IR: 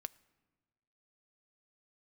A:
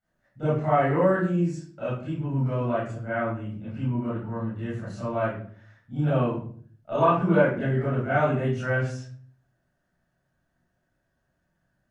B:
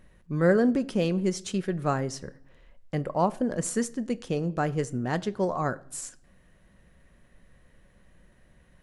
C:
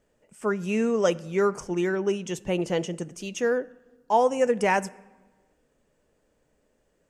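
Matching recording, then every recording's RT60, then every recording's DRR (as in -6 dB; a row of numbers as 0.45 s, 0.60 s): C; 0.50 s, no single decay rate, 1.3 s; -13.0 dB, 12.5 dB, 15.0 dB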